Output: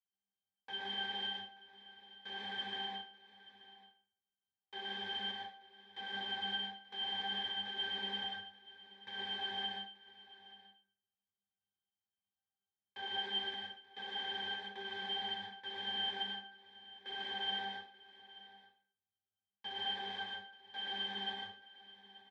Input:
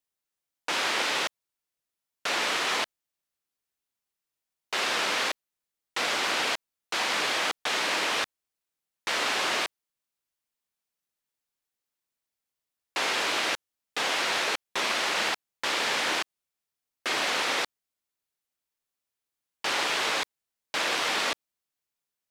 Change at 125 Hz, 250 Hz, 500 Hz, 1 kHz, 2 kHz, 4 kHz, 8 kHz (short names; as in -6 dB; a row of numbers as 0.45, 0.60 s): n/a, -12.0 dB, -18.0 dB, -13.5 dB, -15.5 dB, -8.0 dB, under -35 dB